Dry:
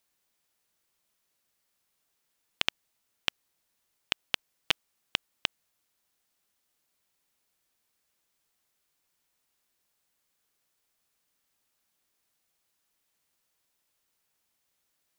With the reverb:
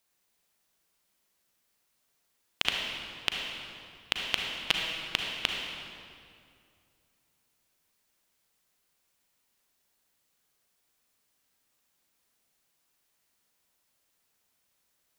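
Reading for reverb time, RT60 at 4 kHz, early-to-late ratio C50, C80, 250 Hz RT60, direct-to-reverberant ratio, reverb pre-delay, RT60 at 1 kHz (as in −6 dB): 2.4 s, 1.8 s, 1.0 dB, 2.0 dB, 2.7 s, 0.0 dB, 35 ms, 2.2 s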